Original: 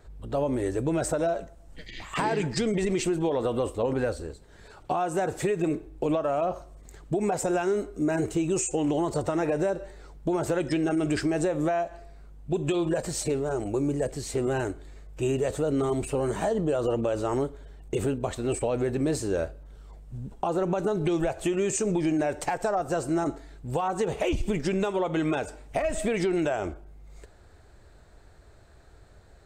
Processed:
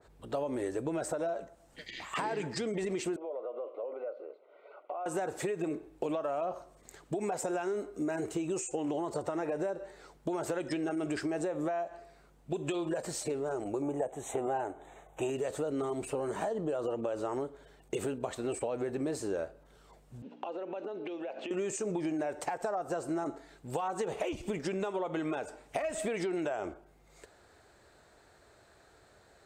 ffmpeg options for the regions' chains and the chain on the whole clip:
-filter_complex "[0:a]asettb=1/sr,asplit=3[a][b][c];[a]atrim=end=3.164[d];[b]atrim=start=3.16:end=5.06,asetpts=PTS-STARTPTS,afade=t=in:d=0.004:c=qsin,afade=t=out:st=1.896:d=0.004:c=qsin,highpass=f=400:w=0.5412,highpass=f=400:w=1.3066,equalizer=f=590:t=q:w=4:g=9,equalizer=f=880:t=q:w=4:g=-7,equalizer=f=1.7k:t=q:w=4:g=-9,lowpass=f=2.2k:w=0.5412,lowpass=f=2.2k:w=1.3066,acompressor=threshold=-39dB:ratio=2.5:attack=3.2:release=140:knee=1:detection=peak,asuperstop=centerf=1700:order=20:qfactor=5.2[e];[c]atrim=start=5.056[f];[d][e]acrossfade=d=0.004:c1=hsin:c2=qsin[g];[g][f]acrossfade=d=0.004:c1=qsin:c2=hsin,asettb=1/sr,asplit=3[h][i][j];[h]atrim=end=13.824[k];[i]atrim=start=13.82:end=15.3,asetpts=PTS-STARTPTS,afade=t=in:d=0.004:c=qsin,afade=t=out:st=1.476:d=0.004:c=qsin,asuperstop=centerf=4800:order=8:qfactor=2.4,equalizer=f=780:t=o:w=0.76:g=14.5[l];[j]atrim=start=15.296[m];[k][l]acrossfade=d=0.004:c1=hsin:c2=qsin[n];[n][m]acrossfade=d=0.004:c1=qsin:c2=hsin,asettb=1/sr,asplit=3[o][p][q];[o]atrim=end=20.224[r];[p]atrim=start=20.22:end=21.51,asetpts=PTS-STARTPTS,afade=t=in:d=0.004:c=qsin,afade=t=out:st=1.286:d=0.004:c=qsin,aeval=exprs='val(0)+0.01*(sin(2*PI*60*n/s)+sin(2*PI*2*60*n/s)/2+sin(2*PI*3*60*n/s)/3+sin(2*PI*4*60*n/s)/4+sin(2*PI*5*60*n/s)/5)':c=same,highpass=f=240:w=0.5412,highpass=f=240:w=1.3066,equalizer=f=250:t=q:w=4:g=5,equalizer=f=530:t=q:w=4:g=6,equalizer=f=1.2k:t=q:w=4:g=-3,equalizer=f=2.7k:t=q:w=4:g=8,lowpass=f=4.6k:w=0.5412,lowpass=f=4.6k:w=1.3066,acompressor=threshold=-33dB:ratio=8:attack=3.2:release=140:knee=1:detection=peak[s];[q]atrim=start=21.506[t];[r][s]acrossfade=d=0.004:c1=hsin:c2=qsin[u];[u][t]acrossfade=d=0.004:c1=qsin:c2=hsin,highpass=f=390:p=1,acompressor=threshold=-30dB:ratio=6,adynamicequalizer=threshold=0.00282:dfrequency=1700:dqfactor=0.7:tfrequency=1700:tqfactor=0.7:attack=5:release=100:ratio=0.375:range=3:mode=cutabove:tftype=highshelf"

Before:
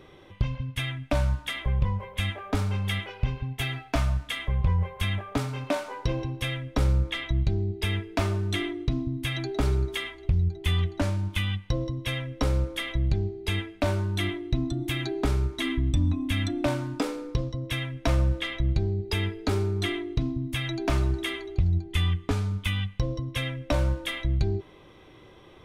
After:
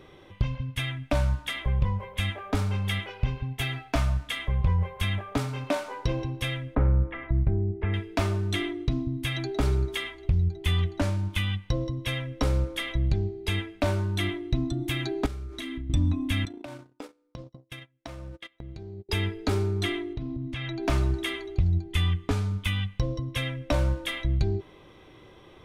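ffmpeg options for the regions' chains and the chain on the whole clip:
-filter_complex "[0:a]asettb=1/sr,asplit=3[a][b][c];[a]atrim=end=6.754[d];[b]atrim=start=6.75:end=7.94,asetpts=PTS-STARTPTS,afade=t=in:d=0.004:c=qsin,afade=t=out:st=1.186:d=0.004:c=qsin,lowpass=f=2k:w=0.5412,lowpass=f=2k:w=1.3066,aemphasis=mode=reproduction:type=75fm[e];[c]atrim=start=7.936[f];[d][e]acrossfade=d=0.004:c1=hsin:c2=qsin[g];[g][f]acrossfade=d=0.004:c1=qsin:c2=hsin,asettb=1/sr,asplit=3[h][i][j];[h]atrim=end=15.264[k];[i]atrim=start=15.26:end=15.9,asetpts=PTS-STARTPTS,afade=t=in:d=0.004:c=qsin,afade=t=out:st=0.636:d=0.004:c=qsin,equalizer=f=910:w=7.1:g=-13,acompressor=threshold=-32dB:ratio=12:attack=3.2:release=140:knee=1:detection=peak,asplit=2[l][m];[m]adelay=34,volume=-9dB[n];[l][n]amix=inputs=2:normalize=0,atrim=end_sample=28224[o];[j]atrim=start=15.896[p];[k][o]acrossfade=d=0.004:c1=hsin:c2=qsin[q];[q][p]acrossfade=d=0.004:c1=qsin:c2=hsin,asettb=1/sr,asplit=3[r][s][t];[r]atrim=end=16.454[u];[s]atrim=start=16.45:end=19.09,asetpts=PTS-STARTPTS,afade=t=in:d=0.004:c=qsin,afade=t=out:st=2.636:d=0.004:c=qsin,agate=range=-34dB:threshold=-29dB:ratio=16:release=100:detection=peak,lowshelf=f=79:g=-12,acompressor=threshold=-35dB:ratio=20:attack=3.2:release=140:knee=1:detection=peak[v];[t]atrim=start=19.086[w];[u][v]acrossfade=d=0.004:c1=hsin:c2=qsin[x];[x][w]acrossfade=d=0.004:c1=qsin:c2=hsin,asettb=1/sr,asplit=3[y][z][aa];[y]atrim=end=20.134[ab];[z]atrim=start=20.13:end=20.83,asetpts=PTS-STARTPTS,afade=t=in:d=0.004:c=qsin,afade=t=out:st=0.696:d=0.004:c=qsin,lowpass=4k,acompressor=threshold=-29dB:ratio=5:attack=3.2:release=140:knee=1:detection=peak[ac];[aa]atrim=start=20.826[ad];[ab][ac]acrossfade=d=0.004:c1=hsin:c2=qsin[ae];[ae][ad]acrossfade=d=0.004:c1=qsin:c2=hsin"

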